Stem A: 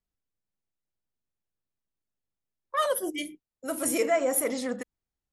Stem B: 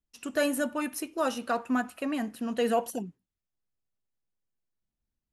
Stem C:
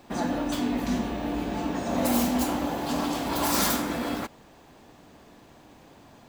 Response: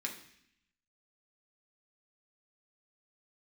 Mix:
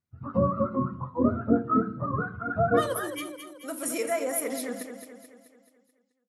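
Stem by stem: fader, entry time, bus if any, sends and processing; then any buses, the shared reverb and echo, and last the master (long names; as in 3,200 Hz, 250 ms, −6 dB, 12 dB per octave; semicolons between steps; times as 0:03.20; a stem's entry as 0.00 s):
−5.0 dB, 0.00 s, send −10.5 dB, echo send −7 dB, high-pass filter 57 Hz
0.0 dB, 0.00 s, send −3 dB, no echo send, frequency axis turned over on the octave scale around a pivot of 570 Hz; low-pass filter 2,300 Hz 12 dB per octave; low-shelf EQ 230 Hz +10 dB
muted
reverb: on, RT60 0.70 s, pre-delay 3 ms
echo: repeating echo 216 ms, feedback 51%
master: no processing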